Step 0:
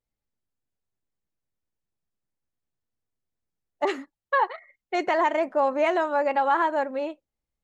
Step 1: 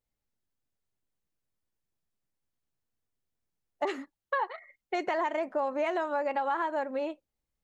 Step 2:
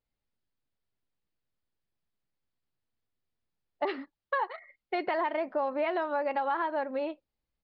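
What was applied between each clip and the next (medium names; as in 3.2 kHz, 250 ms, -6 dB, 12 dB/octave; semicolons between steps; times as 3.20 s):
compression 3:1, threshold -29 dBFS, peak gain reduction 9 dB
resampled via 11.025 kHz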